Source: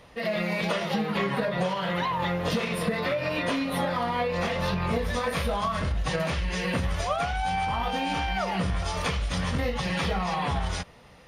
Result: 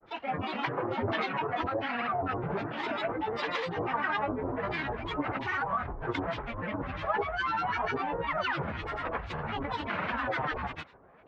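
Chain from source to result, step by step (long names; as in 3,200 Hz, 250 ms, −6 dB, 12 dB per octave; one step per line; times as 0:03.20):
low-pass filter 1,600 Hz 24 dB per octave
spectral tilt +3 dB per octave
granular cloud, grains 20 per second, pitch spread up and down by 12 semitones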